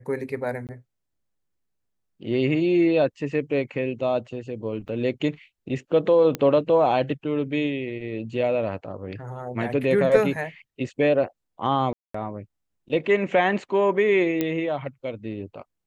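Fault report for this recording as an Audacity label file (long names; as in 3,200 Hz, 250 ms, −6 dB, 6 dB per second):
0.670000	0.690000	drop-out 18 ms
4.880000	4.890000	drop-out 6 ms
6.350000	6.350000	click −12 dBFS
11.930000	12.140000	drop-out 214 ms
14.410000	14.410000	click −11 dBFS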